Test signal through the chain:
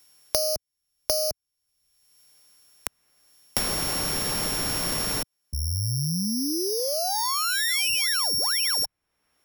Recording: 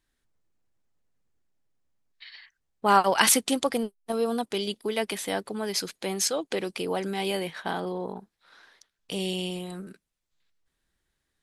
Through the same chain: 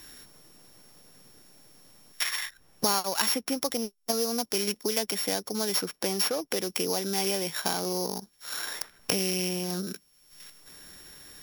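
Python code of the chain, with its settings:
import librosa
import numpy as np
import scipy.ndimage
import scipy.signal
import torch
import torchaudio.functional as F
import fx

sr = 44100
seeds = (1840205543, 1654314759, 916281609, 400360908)

y = np.r_[np.sort(x[:len(x) // 8 * 8].reshape(-1, 8), axis=1).ravel(), x[len(x) // 8 * 8:]]
y = fx.high_shelf(y, sr, hz=4900.0, db=9.0)
y = fx.band_squash(y, sr, depth_pct=100)
y = F.gain(torch.from_numpy(y), -2.5).numpy()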